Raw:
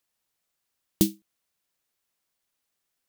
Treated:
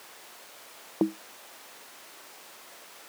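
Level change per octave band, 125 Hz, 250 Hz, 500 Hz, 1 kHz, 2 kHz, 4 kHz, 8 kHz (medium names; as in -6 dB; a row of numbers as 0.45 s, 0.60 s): -10.5 dB, -3.0 dB, +1.0 dB, no reading, +9.0 dB, -4.5 dB, -8.0 dB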